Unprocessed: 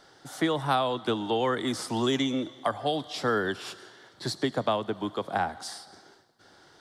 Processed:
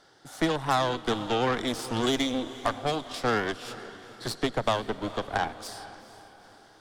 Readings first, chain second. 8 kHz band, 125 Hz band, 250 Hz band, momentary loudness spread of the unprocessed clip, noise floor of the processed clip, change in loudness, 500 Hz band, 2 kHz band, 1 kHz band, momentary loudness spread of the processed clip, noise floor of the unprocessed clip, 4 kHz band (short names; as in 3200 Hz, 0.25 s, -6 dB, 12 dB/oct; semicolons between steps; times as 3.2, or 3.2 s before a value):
+1.5 dB, +0.5 dB, -0.5 dB, 12 LU, -56 dBFS, +0.5 dB, -0.5 dB, +1.5 dB, +0.5 dB, 14 LU, -58 dBFS, +1.0 dB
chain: added harmonics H 7 -28 dB, 8 -18 dB, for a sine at -11.5 dBFS; diffused feedback echo 0.453 s, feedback 47%, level -15.5 dB